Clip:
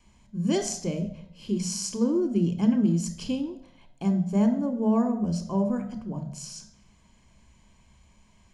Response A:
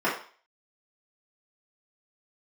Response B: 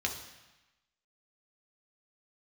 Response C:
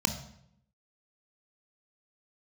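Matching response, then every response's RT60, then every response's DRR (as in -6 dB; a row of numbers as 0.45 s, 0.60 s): C; 0.40 s, 1.0 s, 0.70 s; -9.0 dB, 1.0 dB, 6.5 dB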